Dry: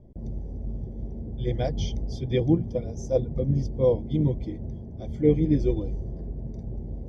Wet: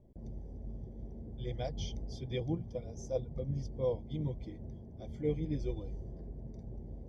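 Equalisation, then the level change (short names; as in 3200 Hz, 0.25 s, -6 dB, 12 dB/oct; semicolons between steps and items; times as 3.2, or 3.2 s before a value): low shelf 420 Hz -4.5 dB; dynamic EQ 310 Hz, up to -6 dB, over -37 dBFS, Q 1; dynamic EQ 1700 Hz, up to -5 dB, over -56 dBFS, Q 2.6; -6.5 dB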